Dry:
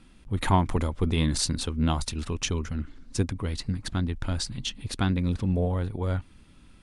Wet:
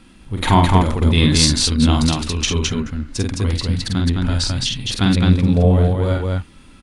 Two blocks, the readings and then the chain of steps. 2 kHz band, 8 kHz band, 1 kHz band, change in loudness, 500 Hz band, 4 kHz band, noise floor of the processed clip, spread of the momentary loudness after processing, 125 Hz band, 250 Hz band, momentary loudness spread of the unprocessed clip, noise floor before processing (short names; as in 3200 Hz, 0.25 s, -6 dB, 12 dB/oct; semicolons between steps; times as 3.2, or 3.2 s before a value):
+11.0 dB, +11.0 dB, +10.0 dB, +11.5 dB, +10.5 dB, +13.5 dB, -46 dBFS, 10 LU, +11.0 dB, +11.5 dB, 8 LU, -54 dBFS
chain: low shelf 82 Hz -5 dB; harmonic-percussive split harmonic +8 dB; dynamic EQ 4100 Hz, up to +7 dB, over -43 dBFS, Q 0.76; loudspeakers at several distances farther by 16 m -4 dB, 73 m -2 dB; gain +3 dB